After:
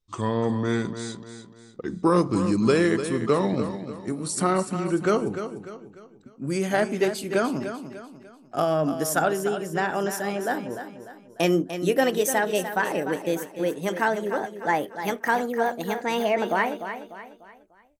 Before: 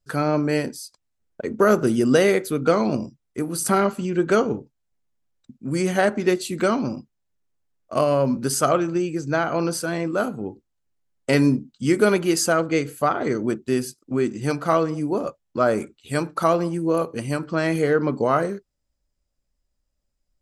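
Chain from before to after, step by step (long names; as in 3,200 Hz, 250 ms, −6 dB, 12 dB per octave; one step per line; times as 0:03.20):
gliding playback speed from 74% → 153%
repeating echo 297 ms, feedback 40%, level −10 dB
level −3.5 dB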